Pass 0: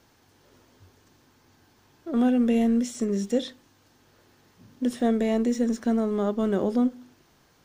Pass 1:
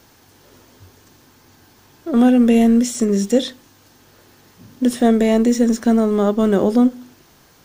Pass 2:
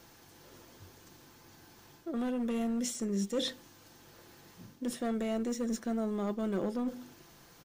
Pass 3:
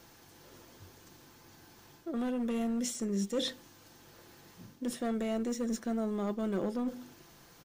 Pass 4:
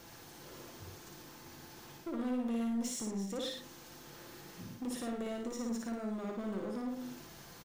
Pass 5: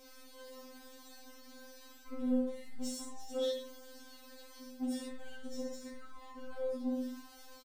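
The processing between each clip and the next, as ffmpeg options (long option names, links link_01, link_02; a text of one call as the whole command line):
ffmpeg -i in.wav -af "highshelf=frequency=8000:gain=7.5,volume=9dB" out.wav
ffmpeg -i in.wav -af "volume=9.5dB,asoftclip=hard,volume=-9.5dB,areverse,acompressor=threshold=-24dB:ratio=6,areverse,aecho=1:1:5.9:0.31,volume=-6.5dB" out.wav
ffmpeg -i in.wav -af anull out.wav
ffmpeg -i in.wav -filter_complex "[0:a]acompressor=threshold=-38dB:ratio=12,asoftclip=type=hard:threshold=-39dB,asplit=2[link_01][link_02];[link_02]aecho=0:1:56|108:0.708|0.422[link_03];[link_01][link_03]amix=inputs=2:normalize=0,volume=2.5dB" out.wav
ffmpeg -i in.wav -filter_complex "[0:a]flanger=delay=1.3:depth=1.6:regen=60:speed=0.49:shape=triangular,asplit=2[link_01][link_02];[link_02]adelay=23,volume=-5dB[link_03];[link_01][link_03]amix=inputs=2:normalize=0,afftfilt=real='re*3.46*eq(mod(b,12),0)':imag='im*3.46*eq(mod(b,12),0)':win_size=2048:overlap=0.75,volume=2.5dB" out.wav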